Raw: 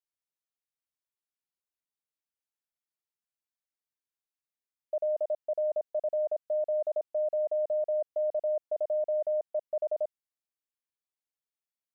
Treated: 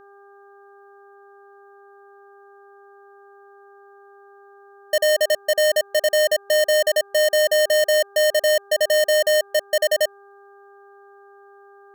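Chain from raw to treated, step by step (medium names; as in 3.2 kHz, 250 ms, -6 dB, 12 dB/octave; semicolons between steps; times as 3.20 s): square wave that keeps the level; mains buzz 400 Hz, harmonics 4, -57 dBFS -4 dB/octave; trim +8.5 dB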